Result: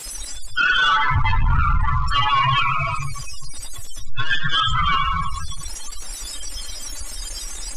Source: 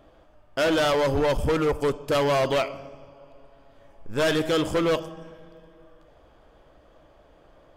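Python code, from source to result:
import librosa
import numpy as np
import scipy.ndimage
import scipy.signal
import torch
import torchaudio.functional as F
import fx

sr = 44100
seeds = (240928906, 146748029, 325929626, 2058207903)

y = x + 0.5 * 10.0 ** (-28.5 / 20.0) * np.diff(np.sign(x), prepend=np.sign(x[:1]))
y = scipy.signal.sosfilt(scipy.signal.cheby1(3, 1.0, [110.0, 1000.0], 'bandstop', fs=sr, output='sos'), y)
y = fx.env_lowpass_down(y, sr, base_hz=1900.0, full_db=-19.5)
y = fx.high_shelf(y, sr, hz=4000.0, db=11.0)
y = fx.echo_wet_highpass(y, sr, ms=343, feedback_pct=56, hz=1600.0, wet_db=-20.0)
y = fx.room_shoebox(y, sr, seeds[0], volume_m3=1500.0, walls='mixed', distance_m=2.4)
y = fx.spec_topn(y, sr, count=16)
y = fx.leveller(y, sr, passes=2)
y = fx.air_absorb(y, sr, metres=86.0)
y = fx.env_flatten(y, sr, amount_pct=50)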